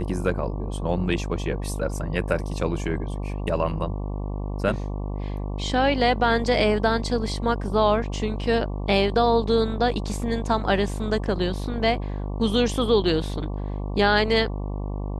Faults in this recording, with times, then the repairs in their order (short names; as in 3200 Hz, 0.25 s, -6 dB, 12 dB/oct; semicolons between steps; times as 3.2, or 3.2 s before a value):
buzz 50 Hz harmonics 23 -29 dBFS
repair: de-hum 50 Hz, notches 23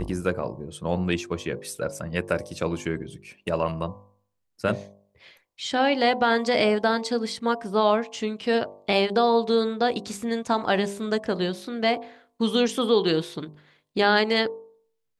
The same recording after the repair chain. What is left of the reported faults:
none